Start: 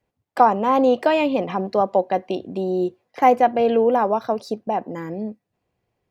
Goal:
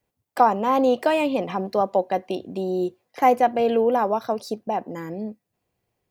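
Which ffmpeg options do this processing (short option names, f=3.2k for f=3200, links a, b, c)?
-filter_complex "[0:a]acrossover=split=2400[a][b];[b]asoftclip=type=tanh:threshold=-31dB[c];[a][c]amix=inputs=2:normalize=0,crystalizer=i=1.5:c=0,volume=-2.5dB"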